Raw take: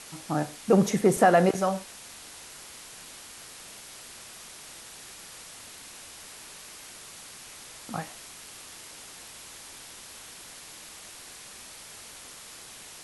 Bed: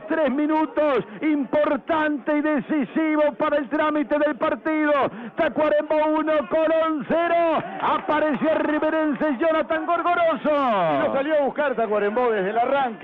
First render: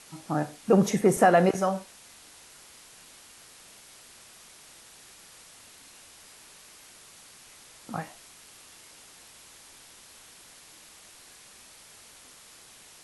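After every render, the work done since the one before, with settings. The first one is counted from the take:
noise reduction from a noise print 6 dB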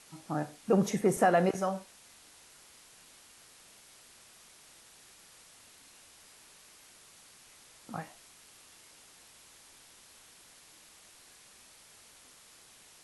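level −5.5 dB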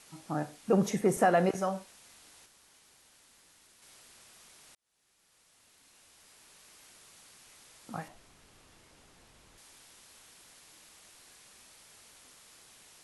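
0:02.46–0:03.82: fill with room tone
0:04.75–0:06.81: fade in
0:08.08–0:09.58: spectral tilt −2.5 dB per octave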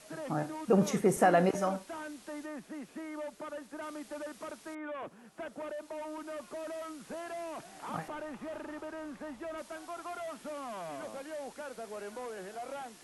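mix in bed −21 dB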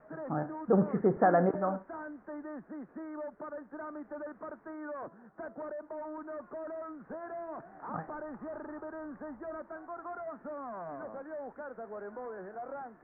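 Butterworth low-pass 1,700 Hz 48 dB per octave
hum removal 333.9 Hz, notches 32

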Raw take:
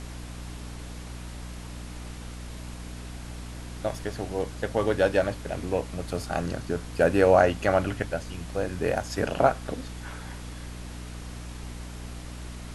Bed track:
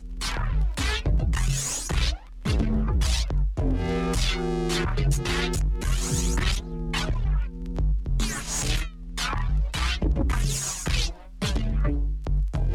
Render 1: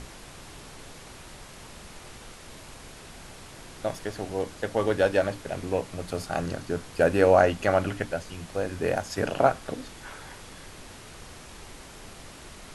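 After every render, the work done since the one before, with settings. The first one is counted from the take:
mains-hum notches 60/120/180/240/300 Hz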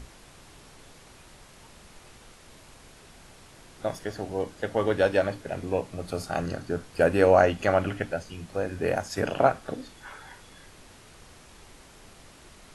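noise reduction from a noise print 6 dB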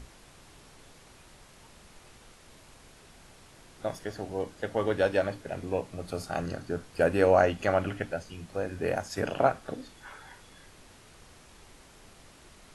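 level −3 dB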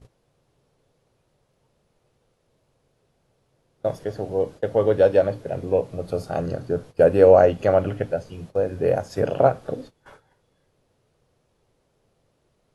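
noise gate −45 dBFS, range −18 dB
octave-band graphic EQ 125/500/2,000/8,000 Hz +11/+11/−3/−4 dB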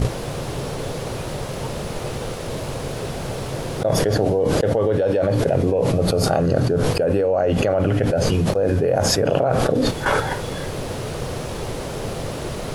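brickwall limiter −13 dBFS, peak gain reduction 10 dB
envelope flattener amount 100%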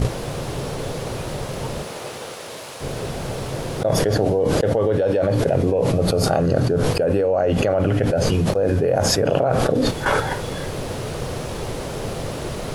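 0:01.82–0:02.80: high-pass filter 360 Hz → 1,300 Hz 6 dB per octave

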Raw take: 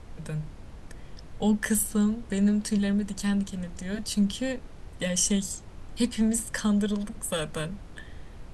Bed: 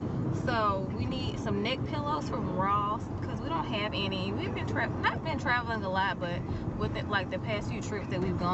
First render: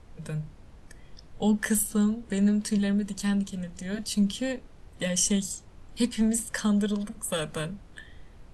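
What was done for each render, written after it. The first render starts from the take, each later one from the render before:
noise reduction from a noise print 6 dB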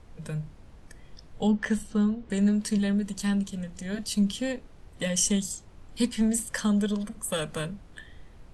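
0:01.47–0:02.30: high-frequency loss of the air 130 metres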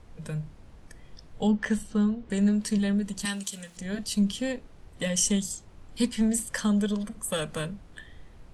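0:03.25–0:03.77: spectral tilt +4 dB per octave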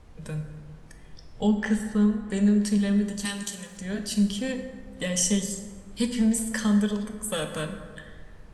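dense smooth reverb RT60 1.7 s, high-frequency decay 0.5×, DRR 5 dB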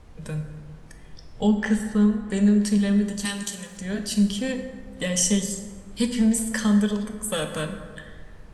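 level +2.5 dB

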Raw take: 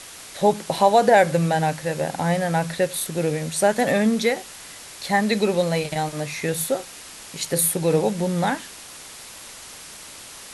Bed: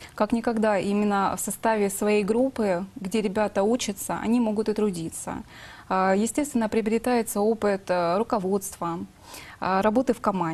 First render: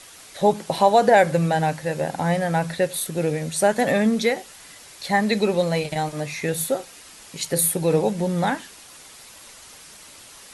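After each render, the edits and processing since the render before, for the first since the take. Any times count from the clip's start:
broadband denoise 6 dB, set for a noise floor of −41 dBFS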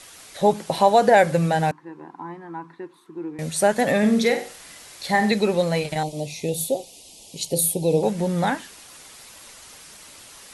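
0:01.71–0:03.39: pair of resonant band-passes 580 Hz, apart 1.6 octaves
0:03.98–0:05.32: flutter between parallel walls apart 8.2 metres, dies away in 0.38 s
0:06.03–0:08.03: Chebyshev band-stop filter 710–3,100 Hz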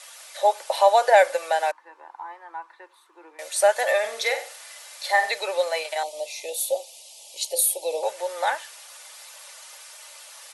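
Butterworth high-pass 530 Hz 36 dB per octave
comb filter 3.4 ms, depth 34%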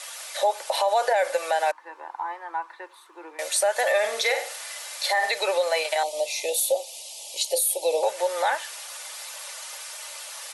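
in parallel at +0.5 dB: downward compressor, threshold −29 dBFS, peak gain reduction 17.5 dB
on the sum: brickwall limiter −13.5 dBFS, peak gain reduction 10.5 dB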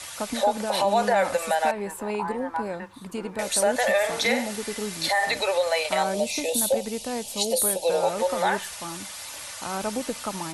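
mix in bed −8 dB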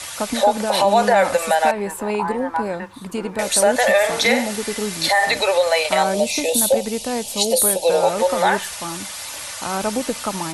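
level +6.5 dB

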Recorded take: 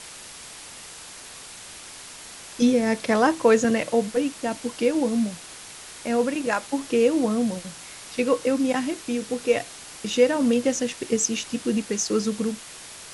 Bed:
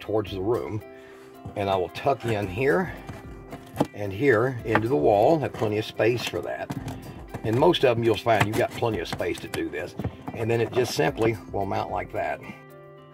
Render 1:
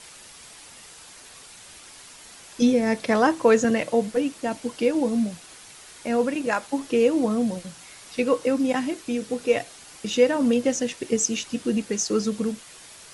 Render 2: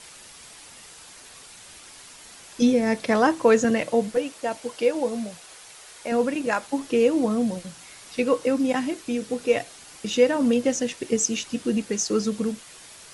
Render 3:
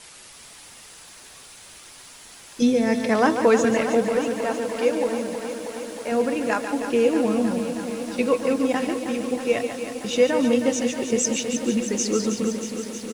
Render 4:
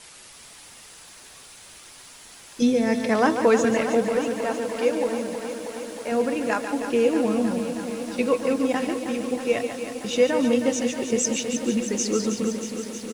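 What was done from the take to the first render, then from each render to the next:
broadband denoise 6 dB, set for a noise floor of −42 dBFS
0:04.17–0:06.12: low shelf with overshoot 370 Hz −6 dB, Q 1.5
on a send: single-tap delay 143 ms −8.5 dB; on the sum: feedback echo at a low word length 317 ms, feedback 80%, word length 8 bits, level −9.5 dB
level −1 dB

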